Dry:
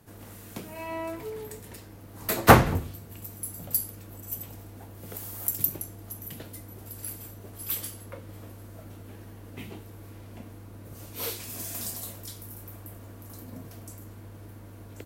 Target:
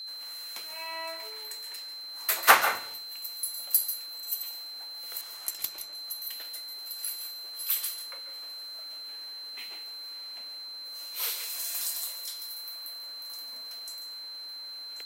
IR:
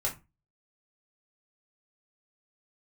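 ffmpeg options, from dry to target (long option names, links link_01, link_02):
-filter_complex "[0:a]aeval=exprs='val(0)+0.01*sin(2*PI*4100*n/s)':channel_layout=same,highpass=1200,asettb=1/sr,asplit=3[link_01][link_02][link_03];[link_01]atrim=end=5.214[link_04];[link_02]atrim=start=5.21:end=5.93,asetpts=PTS-STARTPTS,afade=type=in:duration=0.004:curve=qsin,afade=type=out:start_time=0.716:duration=0.004:curve=qsin,adynamicsmooth=sensitivity=3:basefreq=6000[link_05];[link_03]atrim=start=5.926[link_06];[link_04][link_05]acrossfade=duration=0.004:curve1=hsin:curve2=qsin[link_07];[link_07][link_06]acrossfade=duration=0.004:curve1=qsin:curve2=hsin,asplit=2[link_08][link_09];[1:a]atrim=start_sample=2205,adelay=139[link_10];[link_09][link_10]afir=irnorm=-1:irlink=0,volume=-14dB[link_11];[link_08][link_11]amix=inputs=2:normalize=0,volume=2.5dB"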